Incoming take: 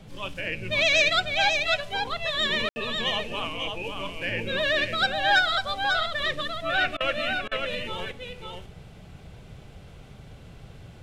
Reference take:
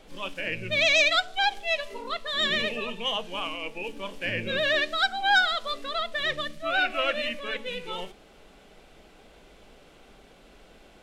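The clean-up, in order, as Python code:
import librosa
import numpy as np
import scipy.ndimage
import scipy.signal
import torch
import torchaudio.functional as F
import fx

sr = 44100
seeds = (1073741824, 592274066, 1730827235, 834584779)

y = fx.fix_ambience(x, sr, seeds[0], print_start_s=9.6, print_end_s=10.1, start_s=2.69, end_s=2.76)
y = fx.fix_interpolate(y, sr, at_s=(6.97, 7.48), length_ms=33.0)
y = fx.noise_reduce(y, sr, print_start_s=9.6, print_end_s=10.1, reduce_db=8.0)
y = fx.fix_echo_inverse(y, sr, delay_ms=546, level_db=-5.0)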